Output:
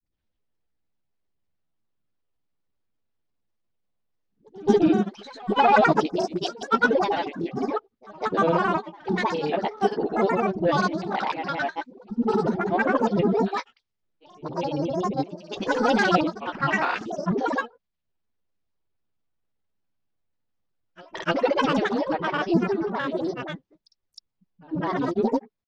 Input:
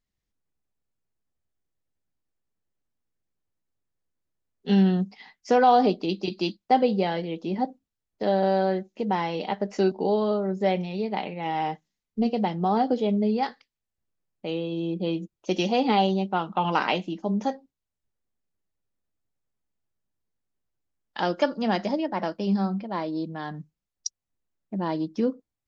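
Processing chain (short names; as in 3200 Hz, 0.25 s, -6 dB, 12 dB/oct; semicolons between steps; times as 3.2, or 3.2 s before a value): trilling pitch shifter +10.5 st, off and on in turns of 64 ms; LPF 5100 Hz 24 dB/oct; in parallel at -4.5 dB: soft clip -19 dBFS, distortion -13 dB; on the sum: dispersion highs, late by 65 ms, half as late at 360 Hz; on a send: reverse echo 0.246 s -23 dB; on the sum: grains, pitch spread up and down by 3 st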